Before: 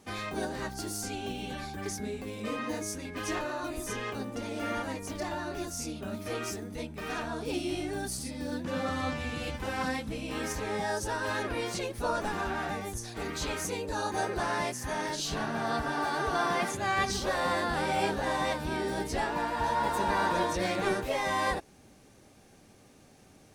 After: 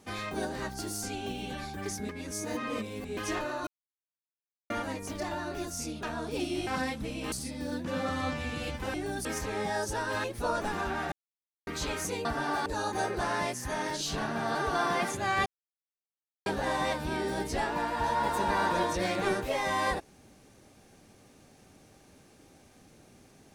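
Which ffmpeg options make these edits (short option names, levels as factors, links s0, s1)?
-filter_complex "[0:a]asplit=18[s0][s1][s2][s3][s4][s5][s6][s7][s8][s9][s10][s11][s12][s13][s14][s15][s16][s17];[s0]atrim=end=2.092[s18];[s1]atrim=start=2.088:end=3.172,asetpts=PTS-STARTPTS,areverse[s19];[s2]atrim=start=3.168:end=3.67,asetpts=PTS-STARTPTS,afade=t=out:st=0.498:d=0.004:c=hsin[s20];[s3]atrim=start=3.67:end=4.7,asetpts=PTS-STARTPTS,volume=0[s21];[s4]atrim=start=4.7:end=6.032,asetpts=PTS-STARTPTS,afade=t=in:d=0.004:c=hsin[s22];[s5]atrim=start=7.168:end=7.812[s23];[s6]atrim=start=9.738:end=10.392[s24];[s7]atrim=start=8.118:end=9.742[s25];[s8]atrim=start=7.808:end=8.122[s26];[s9]atrim=start=10.388:end=11.382[s27];[s10]atrim=start=11.838:end=12.72,asetpts=PTS-STARTPTS,afade=t=out:st=0.878:d=0.004:c=hsin[s28];[s11]atrim=start=12.72:end=13.27,asetpts=PTS-STARTPTS,volume=0[s29];[s12]atrim=start=13.27:end=13.852,asetpts=PTS-STARTPTS,afade=t=in:d=0.004:c=hsin[s30];[s13]atrim=start=15.738:end=16.152[s31];[s14]atrim=start=13.848:end=15.742[s32];[s15]atrim=start=16.148:end=17.06,asetpts=PTS-STARTPTS,afade=t=out:st=0.908:d=0.004:c=hsin[s33];[s16]atrim=start=17.06:end=18.06,asetpts=PTS-STARTPTS,volume=0[s34];[s17]atrim=start=18.06,asetpts=PTS-STARTPTS,afade=t=in:d=0.004:c=hsin[s35];[s18][s19]acrossfade=d=0.004:c1=hsin:c2=hsin[s36];[s20][s21][s22]concat=n=3:v=0:a=1[s37];[s36][s37]acrossfade=d=0.004:c1=hsin:c2=hsin[s38];[s38][s23]acrossfade=d=0.004:c1=hsin:c2=hsin[s39];[s39][s24]acrossfade=d=0.004:c1=hsin:c2=hsin[s40];[s40][s25]acrossfade=d=0.004:c1=hsin:c2=hsin[s41];[s41][s26]acrossfade=d=0.004:c1=hsin:c2=hsin[s42];[s42][s27]acrossfade=d=0.004:c1=hsin:c2=hsin[s43];[s28][s29][s30]concat=n=3:v=0:a=1[s44];[s43][s44]acrossfade=d=0.004:c1=hsin:c2=hsin[s45];[s45][s31]acrossfade=d=0.004:c1=hsin:c2=hsin[s46];[s46][s32]acrossfade=d=0.004:c1=hsin:c2=hsin[s47];[s33][s34][s35]concat=n=3:v=0:a=1[s48];[s47][s48]acrossfade=d=0.004:c1=hsin:c2=hsin"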